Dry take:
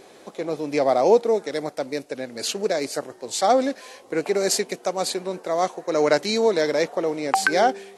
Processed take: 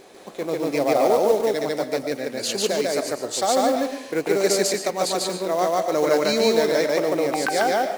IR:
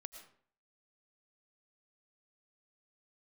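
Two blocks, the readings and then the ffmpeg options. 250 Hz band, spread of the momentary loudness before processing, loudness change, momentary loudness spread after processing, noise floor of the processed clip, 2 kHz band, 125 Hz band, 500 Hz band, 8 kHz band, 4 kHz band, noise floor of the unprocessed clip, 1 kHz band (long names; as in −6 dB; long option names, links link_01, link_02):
+2.0 dB, 11 LU, +1.0 dB, 8 LU, −39 dBFS, −0.5 dB, +2.0 dB, +1.5 dB, +2.0 dB, +2.5 dB, −49 dBFS, 0.0 dB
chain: -filter_complex "[0:a]alimiter=limit=-12.5dB:level=0:latency=1:release=182,acrusher=bits=5:mode=log:mix=0:aa=0.000001,asplit=2[link_01][link_02];[1:a]atrim=start_sample=2205,adelay=146[link_03];[link_02][link_03]afir=irnorm=-1:irlink=0,volume=5.5dB[link_04];[link_01][link_04]amix=inputs=2:normalize=0"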